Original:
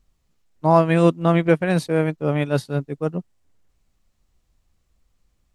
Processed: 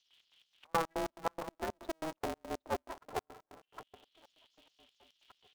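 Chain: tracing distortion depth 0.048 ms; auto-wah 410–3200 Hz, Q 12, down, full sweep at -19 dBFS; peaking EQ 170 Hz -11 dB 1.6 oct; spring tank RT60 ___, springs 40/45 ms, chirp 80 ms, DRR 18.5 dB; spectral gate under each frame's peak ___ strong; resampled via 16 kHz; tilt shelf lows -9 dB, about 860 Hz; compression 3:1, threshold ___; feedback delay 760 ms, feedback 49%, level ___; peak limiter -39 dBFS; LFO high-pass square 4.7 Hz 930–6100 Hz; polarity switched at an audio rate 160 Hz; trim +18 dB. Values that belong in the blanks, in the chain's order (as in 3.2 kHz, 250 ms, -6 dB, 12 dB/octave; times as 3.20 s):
1.6 s, -25 dB, -40 dBFS, -22.5 dB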